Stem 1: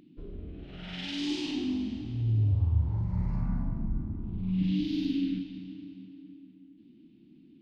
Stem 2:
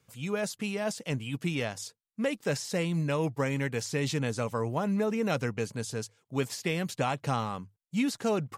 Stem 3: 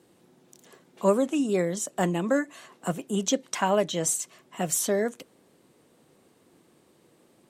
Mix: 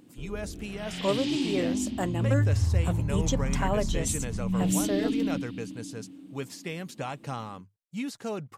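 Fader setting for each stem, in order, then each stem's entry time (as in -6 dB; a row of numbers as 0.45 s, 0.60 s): +1.5 dB, -5.5 dB, -5.0 dB; 0.00 s, 0.00 s, 0.00 s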